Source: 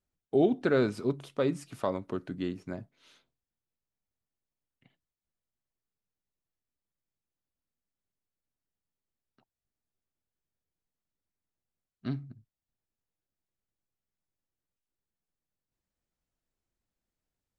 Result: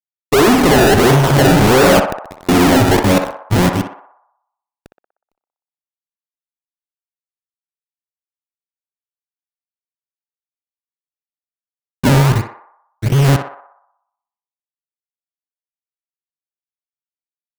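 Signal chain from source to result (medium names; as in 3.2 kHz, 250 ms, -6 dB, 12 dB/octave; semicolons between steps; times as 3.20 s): chunks repeated in reverse 636 ms, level -1.5 dB; harmonic-percussive split percussive -12 dB; in parallel at -2 dB: compression 6:1, threshold -36 dBFS, peak gain reduction 14 dB; on the sum: one-sided clip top -27 dBFS; 1.99–2.49 s: inverted gate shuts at -31 dBFS, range -32 dB; fuzz box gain 51 dB, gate -57 dBFS; decimation with a swept rate 28×, swing 100% 1.5 Hz; on a send: band-passed feedback delay 61 ms, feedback 62%, band-pass 940 Hz, level -4 dB; on the sum: trim +4 dB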